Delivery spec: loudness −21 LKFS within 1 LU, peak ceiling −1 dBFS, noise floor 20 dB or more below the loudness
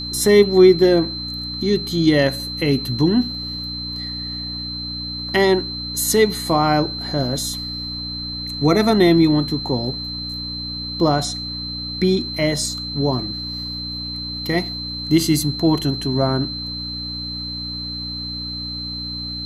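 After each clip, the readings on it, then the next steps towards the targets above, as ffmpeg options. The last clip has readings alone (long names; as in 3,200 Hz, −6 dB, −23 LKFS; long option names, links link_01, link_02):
mains hum 60 Hz; hum harmonics up to 300 Hz; level of the hum −30 dBFS; interfering tone 4,100 Hz; level of the tone −27 dBFS; integrated loudness −20.0 LKFS; sample peak −1.5 dBFS; target loudness −21.0 LKFS
→ -af "bandreject=frequency=60:width_type=h:width=4,bandreject=frequency=120:width_type=h:width=4,bandreject=frequency=180:width_type=h:width=4,bandreject=frequency=240:width_type=h:width=4,bandreject=frequency=300:width_type=h:width=4"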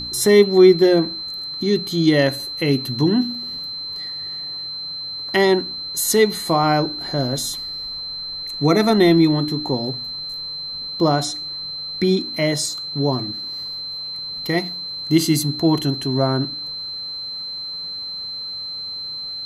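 mains hum none found; interfering tone 4,100 Hz; level of the tone −27 dBFS
→ -af "bandreject=frequency=4100:width=30"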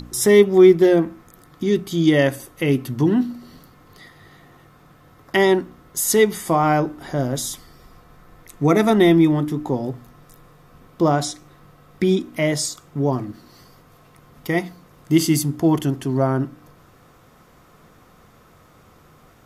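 interfering tone none found; integrated loudness −19.0 LKFS; sample peak −2.0 dBFS; target loudness −21.0 LKFS
→ -af "volume=-2dB"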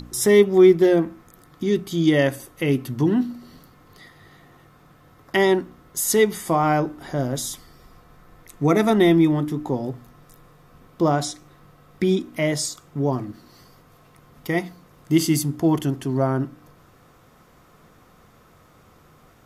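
integrated loudness −21.0 LKFS; sample peak −4.0 dBFS; background noise floor −54 dBFS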